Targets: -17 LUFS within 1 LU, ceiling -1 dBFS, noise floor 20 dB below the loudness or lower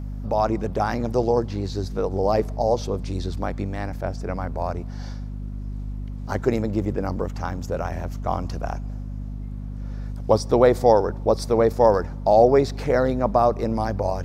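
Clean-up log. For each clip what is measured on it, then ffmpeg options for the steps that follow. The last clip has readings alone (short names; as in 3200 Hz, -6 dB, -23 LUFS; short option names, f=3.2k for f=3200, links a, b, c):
hum 50 Hz; harmonics up to 250 Hz; hum level -28 dBFS; loudness -22.5 LUFS; peak -3.0 dBFS; loudness target -17.0 LUFS
-> -af "bandreject=f=50:t=h:w=6,bandreject=f=100:t=h:w=6,bandreject=f=150:t=h:w=6,bandreject=f=200:t=h:w=6,bandreject=f=250:t=h:w=6"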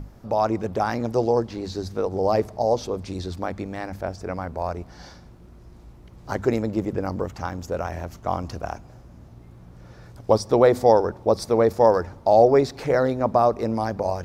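hum none; loudness -23.0 LUFS; peak -3.5 dBFS; loudness target -17.0 LUFS
-> -af "volume=6dB,alimiter=limit=-1dB:level=0:latency=1"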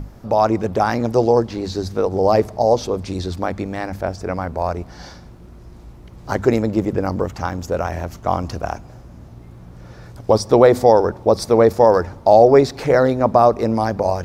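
loudness -17.5 LUFS; peak -1.0 dBFS; noise floor -41 dBFS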